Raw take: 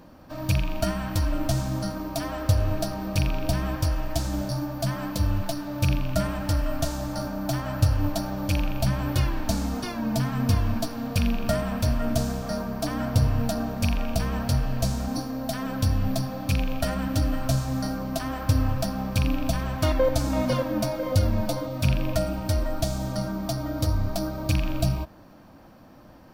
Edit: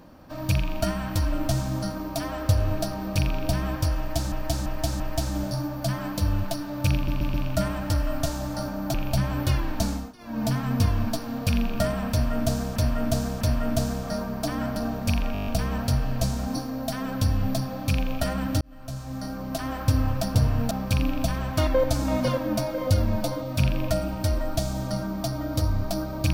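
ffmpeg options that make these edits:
ffmpeg -i in.wav -filter_complex "[0:a]asplit=23[link_01][link_02][link_03][link_04][link_05][link_06][link_07][link_08][link_09][link_10][link_11][link_12][link_13][link_14][link_15][link_16][link_17][link_18][link_19][link_20][link_21][link_22][link_23];[link_01]atrim=end=4.322[link_24];[link_02]atrim=start=3.978:end=4.322[link_25];[link_03]atrim=start=3.978:end=4.322[link_26];[link_04]atrim=start=3.978:end=6.062[link_27];[link_05]atrim=start=5.928:end=6.062[link_28];[link_06]atrim=start=5.928:end=6.062[link_29];[link_07]atrim=start=5.928:end=7.532[link_30];[link_08]atrim=start=8.628:end=9.83,asetpts=PTS-STARTPTS,afade=type=out:start_time=0.952:duration=0.25:silence=0.0944061[link_31];[link_09]atrim=start=9.83:end=9.87,asetpts=PTS-STARTPTS,volume=-20.5dB[link_32];[link_10]atrim=start=9.87:end=12.452,asetpts=PTS-STARTPTS,afade=type=in:duration=0.25:silence=0.0944061[link_33];[link_11]atrim=start=11.798:end=12.452[link_34];[link_12]atrim=start=11.798:end=13.152[link_35];[link_13]atrim=start=13.508:end=14.102[link_36];[link_14]atrim=start=14.078:end=14.102[link_37];[link_15]atrim=start=14.078:end=14.102[link_38];[link_16]atrim=start=14.078:end=14.102[link_39];[link_17]atrim=start=14.078:end=14.102[link_40];[link_18]atrim=start=14.078:end=14.102[link_41];[link_19]atrim=start=14.078:end=14.102[link_42];[link_20]atrim=start=14.078:end=17.22,asetpts=PTS-STARTPTS,afade=type=out:start_time=3.138:duration=0.004:curve=hsin[link_43];[link_21]atrim=start=17.22:end=18.962,asetpts=PTS-STARTPTS,afade=type=in:duration=1.1[link_44];[link_22]atrim=start=13.148:end=13.512[link_45];[link_23]atrim=start=18.958[link_46];[link_24][link_25]acrossfade=duration=0.004:curve1=hsin:curve2=hsin[link_47];[link_47][link_26]acrossfade=duration=0.004:curve1=hsin:curve2=hsin[link_48];[link_48][link_27]acrossfade=duration=0.004:curve1=hsin:curve2=hsin[link_49];[link_49][link_28]acrossfade=duration=0.004:curve1=hsin:curve2=hsin[link_50];[link_50][link_29]acrossfade=duration=0.004:curve1=hsin:curve2=hsin[link_51];[link_51][link_30]acrossfade=duration=0.004:curve1=hsin:curve2=hsin[link_52];[link_31][link_32][link_33]concat=n=3:v=0:a=1[link_53];[link_52][link_53]acrossfade=duration=0.004:curve1=hsin:curve2=hsin[link_54];[link_54][link_34]acrossfade=duration=0.004:curve1=hsin:curve2=hsin[link_55];[link_55][link_35]acrossfade=duration=0.004:curve1=hsin:curve2=hsin[link_56];[link_56][link_36]acrossfade=duration=0.004:curve1=hsin:curve2=hsin[link_57];[link_57][link_37]acrossfade=duration=0.004:curve1=hsin:curve2=hsin[link_58];[link_58][link_38]acrossfade=duration=0.004:curve1=hsin:curve2=hsin[link_59];[link_59][link_39]acrossfade=duration=0.004:curve1=hsin:curve2=hsin[link_60];[link_60][link_40]acrossfade=duration=0.004:curve1=hsin:curve2=hsin[link_61];[link_61][link_41]acrossfade=duration=0.004:curve1=hsin:curve2=hsin[link_62];[link_62][link_42]acrossfade=duration=0.004:curve1=hsin:curve2=hsin[link_63];[link_43][link_44]concat=n=2:v=0:a=1[link_64];[link_63][link_64]acrossfade=duration=0.004:curve1=hsin:curve2=hsin[link_65];[link_65][link_45]acrossfade=duration=0.004:curve1=hsin:curve2=hsin[link_66];[link_66][link_46]acrossfade=duration=0.004:curve1=hsin:curve2=hsin" out.wav

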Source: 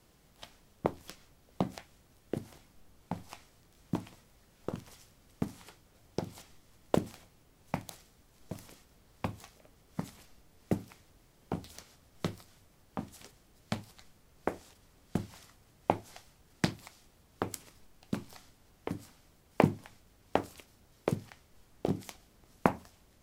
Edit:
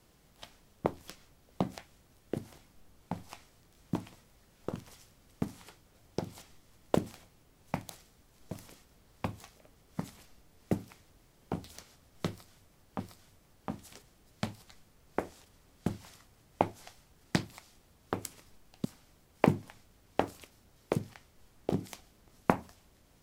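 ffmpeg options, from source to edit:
ffmpeg -i in.wav -filter_complex "[0:a]asplit=3[link_01][link_02][link_03];[link_01]atrim=end=13.002[link_04];[link_02]atrim=start=12.288:end=18.142[link_05];[link_03]atrim=start=19.008[link_06];[link_04][link_05]acrossfade=duration=0.004:curve1=hsin:curve2=hsin[link_07];[link_07][link_06]acrossfade=duration=0.004:curve1=hsin:curve2=hsin" out.wav

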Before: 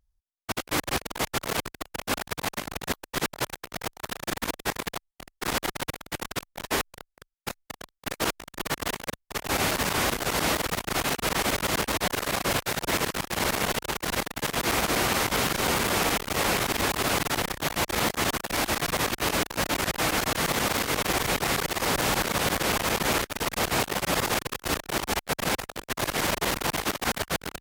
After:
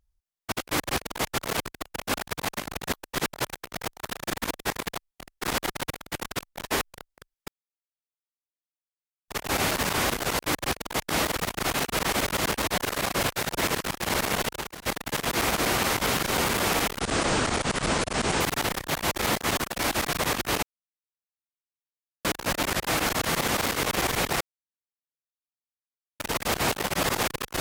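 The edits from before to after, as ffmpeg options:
ffmpeg -i in.wav -filter_complex "[0:a]asplit=11[link_01][link_02][link_03][link_04][link_05][link_06][link_07][link_08][link_09][link_10][link_11];[link_01]atrim=end=7.48,asetpts=PTS-STARTPTS,afade=type=out:start_time=7.476:duration=0.004:curve=hsin[link_12];[link_02]atrim=start=7.48:end=9.28,asetpts=PTS-STARTPTS,volume=0[link_13];[link_03]atrim=start=9.28:end=10.392,asetpts=PTS-STARTPTS,afade=type=in:duration=0.004:curve=hsin[link_14];[link_04]atrim=start=0.638:end=1.342[link_15];[link_05]atrim=start=10.388:end=14.15,asetpts=PTS-STARTPTS,afade=type=out:start_time=3.382:duration=0.38:silence=0.0707946[link_16];[link_06]atrim=start=14.15:end=16.294,asetpts=PTS-STARTPTS,afade=type=in:duration=0.004:curve=hsin:silence=0.0707946[link_17];[link_07]atrim=start=16.29:end=17.14,asetpts=PTS-STARTPTS,asetrate=26460,aresample=44100[link_18];[link_08]atrim=start=17.136:end=19.36,asetpts=PTS-STARTPTS,afade=type=out:start_time=2.22:duration=0.004:curve=hsin,apad=pad_dur=1.62[link_19];[link_09]atrim=start=19.36:end=21.52,asetpts=PTS-STARTPTS,afade=type=in:duration=0.004:curve=hsin,afade=type=out:start_time=2.156:duration=0.004:curve=hsin[link_20];[link_10]atrim=start=21.52:end=23.31,asetpts=PTS-STARTPTS,volume=0[link_21];[link_11]atrim=start=23.31,asetpts=PTS-STARTPTS,afade=type=in:duration=0.004:curve=hsin[link_22];[link_12][link_13][link_14]concat=n=3:v=0:a=1[link_23];[link_23][link_15]acrossfade=duration=0.004:curve1=hsin:curve2=hsin[link_24];[link_16][link_17]concat=n=2:v=0:a=1[link_25];[link_24][link_25]acrossfade=duration=0.004:curve1=hsin:curve2=hsin[link_26];[link_26][link_18]acrossfade=duration=0.004:curve1=hsin:curve2=hsin[link_27];[link_19][link_20][link_21][link_22]concat=n=4:v=0:a=1[link_28];[link_27][link_28]acrossfade=duration=0.004:curve1=hsin:curve2=hsin" out.wav

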